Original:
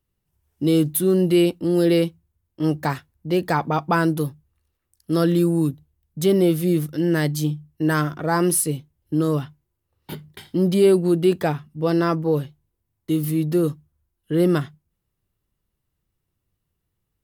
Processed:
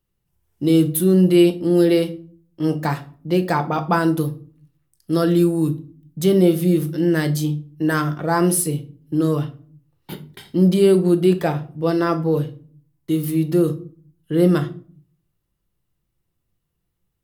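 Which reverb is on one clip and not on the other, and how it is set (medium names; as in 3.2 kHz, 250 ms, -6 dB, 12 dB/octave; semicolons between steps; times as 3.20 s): simulated room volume 360 m³, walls furnished, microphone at 0.82 m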